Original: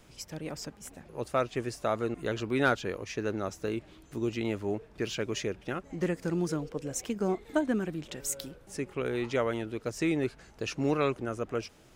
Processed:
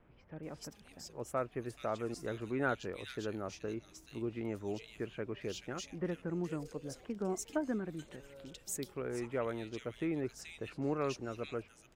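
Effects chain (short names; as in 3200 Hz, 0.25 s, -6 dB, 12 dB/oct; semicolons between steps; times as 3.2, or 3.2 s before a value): bands offset in time lows, highs 0.43 s, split 2400 Hz; gain -7 dB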